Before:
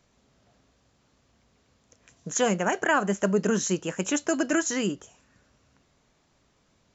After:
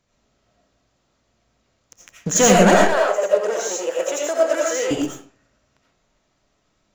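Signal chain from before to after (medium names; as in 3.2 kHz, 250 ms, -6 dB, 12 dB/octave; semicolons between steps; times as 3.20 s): waveshaping leveller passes 3; 2.79–4.91 s: ladder high-pass 480 Hz, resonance 65%; reverberation RT60 0.45 s, pre-delay 45 ms, DRR -3 dB; trim +1 dB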